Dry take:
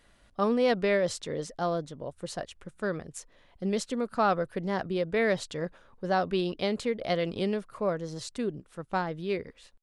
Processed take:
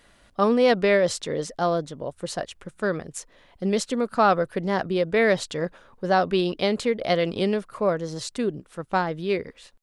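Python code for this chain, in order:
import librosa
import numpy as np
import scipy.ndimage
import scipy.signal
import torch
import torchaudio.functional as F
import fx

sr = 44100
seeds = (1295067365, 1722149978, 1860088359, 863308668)

y = fx.low_shelf(x, sr, hz=130.0, db=-5.0)
y = y * 10.0 ** (6.5 / 20.0)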